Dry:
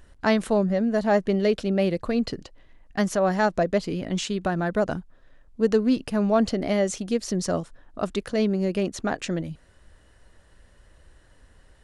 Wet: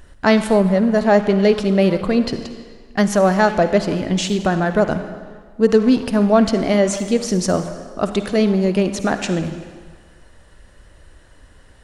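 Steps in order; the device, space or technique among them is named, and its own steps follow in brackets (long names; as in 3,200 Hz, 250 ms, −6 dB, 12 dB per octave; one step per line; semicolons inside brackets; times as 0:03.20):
saturated reverb return (on a send at −6.5 dB: convolution reverb RT60 1.5 s, pre-delay 45 ms + soft clipping −23 dBFS, distortion −11 dB)
on the sum: level +7 dB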